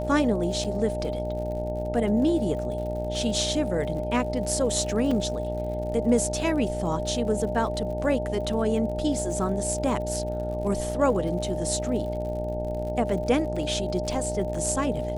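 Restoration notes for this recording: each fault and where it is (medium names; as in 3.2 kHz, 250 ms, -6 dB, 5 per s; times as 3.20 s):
buzz 60 Hz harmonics 15 -32 dBFS
crackle 68 per s -36 dBFS
whine 610 Hz -30 dBFS
0.64–0.65 s: dropout 6.1 ms
5.11 s: dropout 3.8 ms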